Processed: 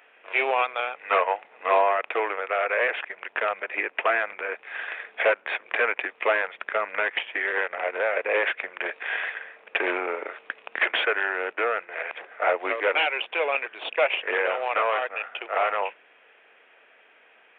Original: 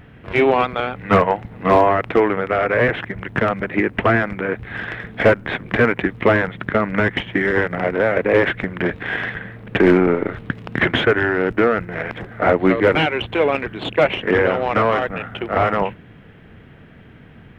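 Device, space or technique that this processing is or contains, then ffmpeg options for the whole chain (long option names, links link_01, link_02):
musical greeting card: -af "aresample=8000,aresample=44100,highpass=frequency=520:width=0.5412,highpass=frequency=520:width=1.3066,equalizer=frequency=2500:width_type=o:width=0.23:gain=9,volume=-5.5dB"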